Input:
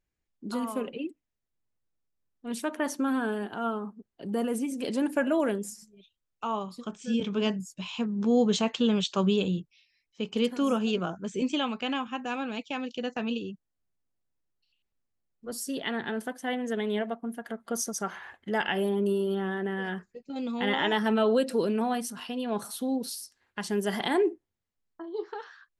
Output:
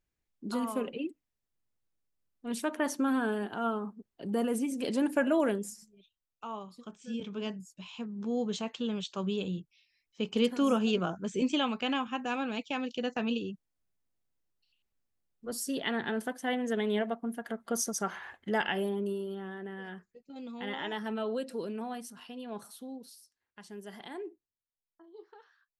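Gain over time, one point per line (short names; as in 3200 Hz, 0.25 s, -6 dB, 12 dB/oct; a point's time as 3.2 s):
5.47 s -1 dB
6.46 s -9 dB
9.19 s -9 dB
10.22 s -0.5 dB
18.5 s -0.5 dB
19.35 s -10 dB
22.59 s -10 dB
23.13 s -16.5 dB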